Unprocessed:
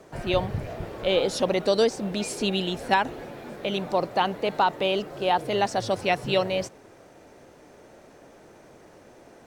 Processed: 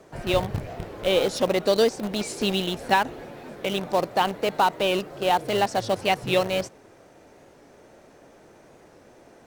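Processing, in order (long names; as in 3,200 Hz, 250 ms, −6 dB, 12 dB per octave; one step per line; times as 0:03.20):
in parallel at −10.5 dB: bit reduction 4 bits
on the sum: wow of a warped record 45 rpm, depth 100 cents
level −1 dB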